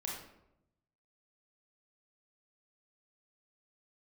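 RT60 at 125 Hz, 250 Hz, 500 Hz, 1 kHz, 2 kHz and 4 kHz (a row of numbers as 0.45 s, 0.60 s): 1.3 s, 1.0 s, 0.90 s, 0.75 s, 0.65 s, 0.50 s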